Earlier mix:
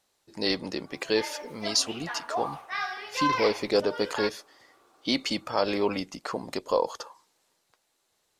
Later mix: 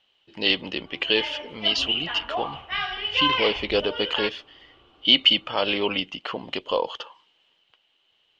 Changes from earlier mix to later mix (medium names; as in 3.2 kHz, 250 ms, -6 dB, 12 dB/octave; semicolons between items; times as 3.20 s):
background: remove frequency weighting A; master: add resonant low-pass 3 kHz, resonance Q 15